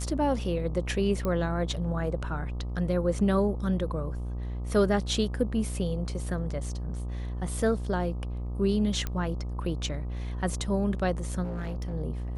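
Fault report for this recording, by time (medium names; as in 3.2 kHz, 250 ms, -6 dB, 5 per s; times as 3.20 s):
buzz 60 Hz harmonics 21 -33 dBFS
1.25 s: pop -18 dBFS
9.07 s: pop -17 dBFS
11.43–11.94 s: clipped -29.5 dBFS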